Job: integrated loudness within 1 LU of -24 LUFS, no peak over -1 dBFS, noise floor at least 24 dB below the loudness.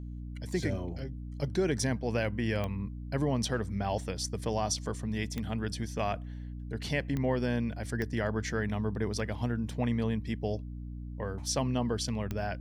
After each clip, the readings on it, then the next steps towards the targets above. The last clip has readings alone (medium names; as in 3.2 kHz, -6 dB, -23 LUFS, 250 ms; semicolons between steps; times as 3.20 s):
clicks found 5; hum 60 Hz; highest harmonic 300 Hz; hum level -38 dBFS; loudness -33.0 LUFS; peak level -17.0 dBFS; loudness target -24.0 LUFS
-> de-click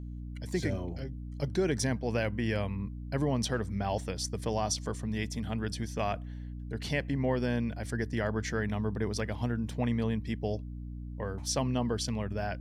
clicks found 0; hum 60 Hz; highest harmonic 300 Hz; hum level -38 dBFS
-> hum notches 60/120/180/240/300 Hz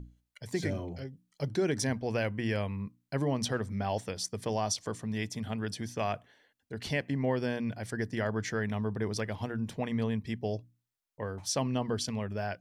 hum not found; loudness -33.5 LUFS; peak level -18.0 dBFS; loudness target -24.0 LUFS
-> trim +9.5 dB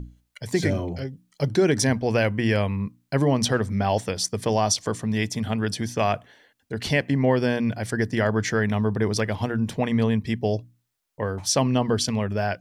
loudness -24.0 LUFS; peak level -8.5 dBFS; noise floor -72 dBFS